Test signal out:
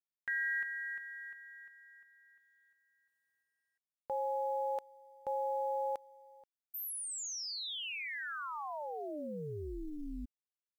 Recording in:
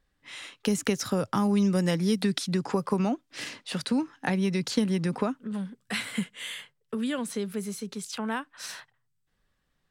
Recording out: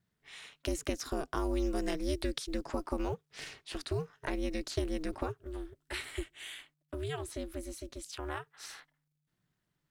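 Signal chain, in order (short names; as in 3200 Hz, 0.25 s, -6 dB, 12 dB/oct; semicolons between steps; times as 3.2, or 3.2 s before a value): companded quantiser 8-bit; ring modulator 150 Hz; gain -5 dB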